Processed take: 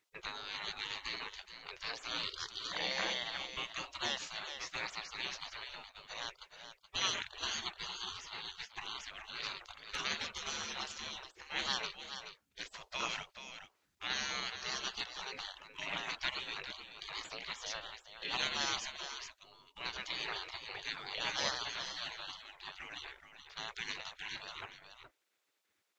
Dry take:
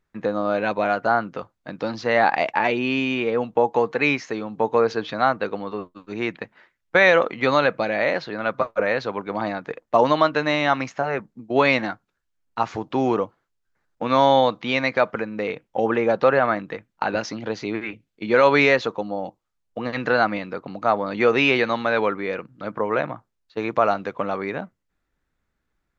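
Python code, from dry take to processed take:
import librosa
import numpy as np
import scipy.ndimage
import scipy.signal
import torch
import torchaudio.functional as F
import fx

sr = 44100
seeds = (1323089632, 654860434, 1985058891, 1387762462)

y = fx.band_shelf(x, sr, hz=730.0, db=-9.5, octaves=2.5)
y = y + 10.0 ** (-9.5 / 20.0) * np.pad(y, (int(426 * sr / 1000.0), 0))[:len(y)]
y = fx.spec_gate(y, sr, threshold_db=-25, keep='weak')
y = F.gain(torch.from_numpy(y), 5.5).numpy()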